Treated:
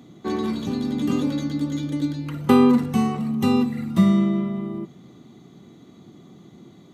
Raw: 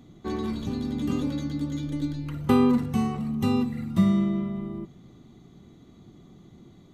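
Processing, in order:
high-pass filter 150 Hz 12 dB per octave
level +5.5 dB

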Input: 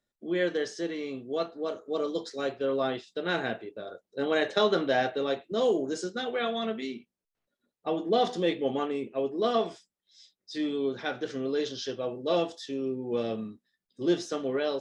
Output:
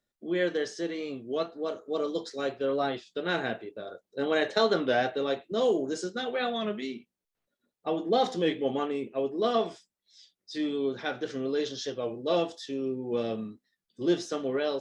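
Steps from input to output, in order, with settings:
wow of a warped record 33 1/3 rpm, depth 100 cents

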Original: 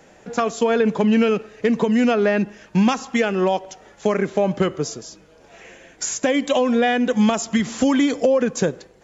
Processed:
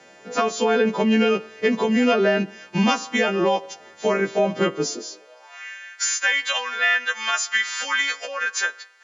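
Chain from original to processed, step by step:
every partial snapped to a pitch grid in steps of 2 semitones
high-pass filter sweep 90 Hz → 1,500 Hz, 0:04.53–0:05.67
three-way crossover with the lows and the highs turned down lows −16 dB, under 190 Hz, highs −14 dB, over 5,300 Hz

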